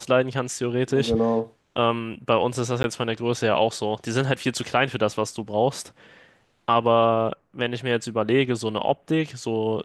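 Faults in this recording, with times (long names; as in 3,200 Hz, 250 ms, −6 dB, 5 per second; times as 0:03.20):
0:02.83–0:02.84: drop-out 11 ms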